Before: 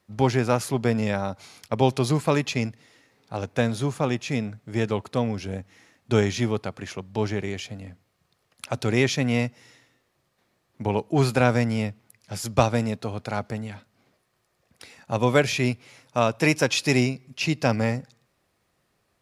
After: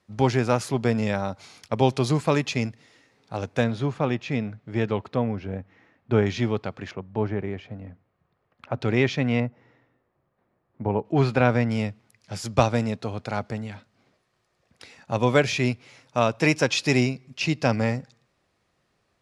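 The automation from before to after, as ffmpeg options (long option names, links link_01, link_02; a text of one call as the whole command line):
ffmpeg -i in.wav -af "asetnsamples=nb_out_samples=441:pad=0,asendcmd='3.64 lowpass f 3500;5.16 lowpass f 2000;6.26 lowpass f 4200;6.91 lowpass f 1600;8.81 lowpass f 3300;9.4 lowpass f 1300;11.05 lowpass f 3500;11.71 lowpass f 7300',lowpass=8500" out.wav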